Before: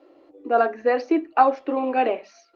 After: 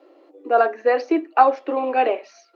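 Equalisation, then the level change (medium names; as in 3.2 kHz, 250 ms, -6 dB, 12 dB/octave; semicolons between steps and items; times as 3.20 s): high-pass 300 Hz 24 dB/octave; +2.5 dB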